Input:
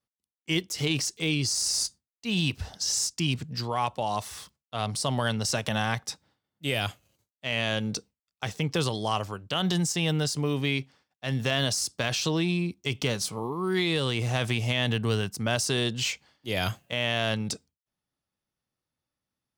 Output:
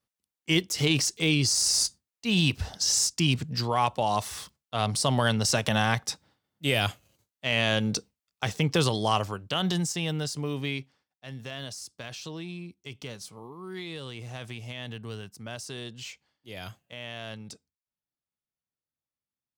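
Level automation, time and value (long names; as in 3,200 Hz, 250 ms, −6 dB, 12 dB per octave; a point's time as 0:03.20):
0:09.15 +3 dB
0:10.11 −4 dB
0:10.69 −4 dB
0:11.36 −12 dB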